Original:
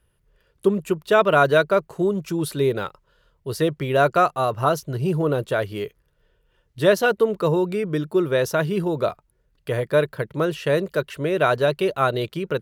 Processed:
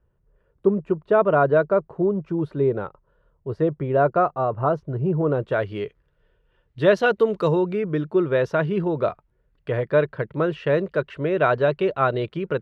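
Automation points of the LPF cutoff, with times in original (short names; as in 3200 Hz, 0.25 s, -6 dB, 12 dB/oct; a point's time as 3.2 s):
5.16 s 1100 Hz
5.7 s 2900 Hz
6.86 s 2900 Hz
7.43 s 6200 Hz
7.67 s 2400 Hz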